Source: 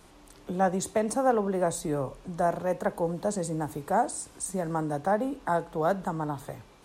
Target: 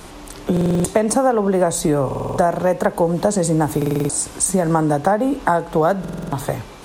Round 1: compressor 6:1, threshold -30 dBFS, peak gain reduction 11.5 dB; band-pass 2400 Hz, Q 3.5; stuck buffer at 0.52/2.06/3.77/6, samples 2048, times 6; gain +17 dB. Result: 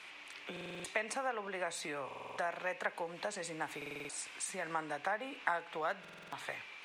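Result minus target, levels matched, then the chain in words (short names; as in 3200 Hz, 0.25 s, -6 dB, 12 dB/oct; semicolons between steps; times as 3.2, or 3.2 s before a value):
2000 Hz band +12.5 dB
compressor 6:1, threshold -30 dBFS, peak gain reduction 11.5 dB; stuck buffer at 0.52/2.06/3.77/6, samples 2048, times 6; gain +17 dB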